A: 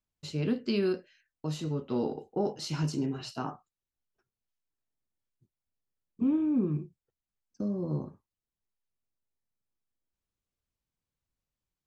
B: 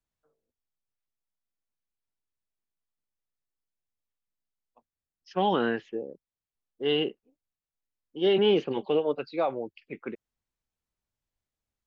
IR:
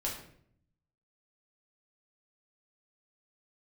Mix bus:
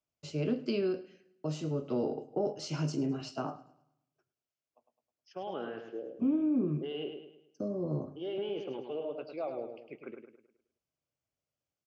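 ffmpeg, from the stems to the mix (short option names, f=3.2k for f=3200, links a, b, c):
-filter_complex "[0:a]acrossover=split=280[a][b];[b]acompressor=threshold=-31dB:ratio=6[c];[a][c]amix=inputs=2:normalize=0,volume=-0.5dB,asplit=3[d][e][f];[e]volume=-21dB[g];[f]volume=-18.5dB[h];[1:a]alimiter=limit=-23dB:level=0:latency=1:release=31,volume=-8dB,asplit=3[i][j][k];[j]volume=-20dB[l];[k]volume=-6dB[m];[2:a]atrim=start_sample=2205[n];[g][l]amix=inputs=2:normalize=0[o];[o][n]afir=irnorm=-1:irlink=0[p];[h][m]amix=inputs=2:normalize=0,aecho=0:1:105|210|315|420|525|630:1|0.41|0.168|0.0689|0.0283|0.0116[q];[d][i][p][q]amix=inputs=4:normalize=0,highpass=110,equalizer=f=200:t=q:w=4:g=-7,equalizer=f=620:t=q:w=4:g=7,equalizer=f=940:t=q:w=4:g=-5,equalizer=f=1.8k:t=q:w=4:g=-7,equalizer=f=3.9k:t=q:w=4:g=-9,lowpass=f=6.8k:w=0.5412,lowpass=f=6.8k:w=1.3066"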